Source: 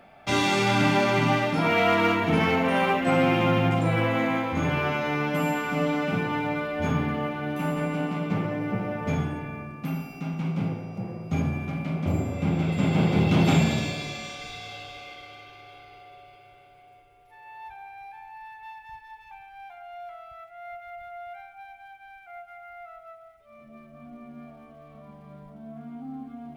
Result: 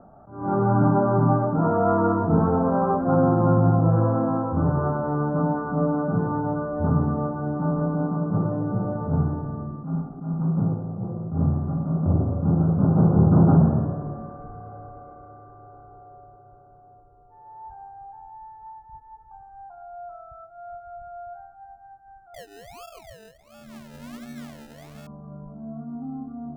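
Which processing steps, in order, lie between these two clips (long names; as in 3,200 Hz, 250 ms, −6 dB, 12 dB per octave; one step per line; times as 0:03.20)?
Butterworth low-pass 1,400 Hz 72 dB per octave
low-shelf EQ 360 Hz +8.5 dB
0:22.34–0:25.07: sample-and-hold swept by an LFO 31×, swing 60% 1.4 Hz
dynamic equaliser 250 Hz, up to −3 dB, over −31 dBFS, Q 1.3
level that may rise only so fast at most 110 dB per second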